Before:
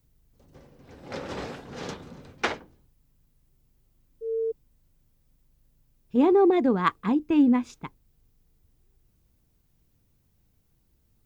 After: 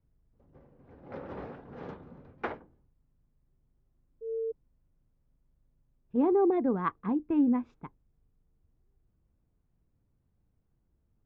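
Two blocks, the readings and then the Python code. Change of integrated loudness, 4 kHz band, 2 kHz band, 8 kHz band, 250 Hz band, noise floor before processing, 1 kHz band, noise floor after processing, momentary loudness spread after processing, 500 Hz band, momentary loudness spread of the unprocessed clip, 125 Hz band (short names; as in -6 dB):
-4.5 dB, under -20 dB, -11.0 dB, n/a, -5.5 dB, -68 dBFS, -6.5 dB, -74 dBFS, 20 LU, -5.5 dB, 20 LU, -5.5 dB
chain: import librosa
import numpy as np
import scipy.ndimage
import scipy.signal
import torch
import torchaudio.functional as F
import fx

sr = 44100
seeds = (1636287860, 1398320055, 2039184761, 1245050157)

y = scipy.signal.sosfilt(scipy.signal.butter(2, 1400.0, 'lowpass', fs=sr, output='sos'), x)
y = y * librosa.db_to_amplitude(-5.5)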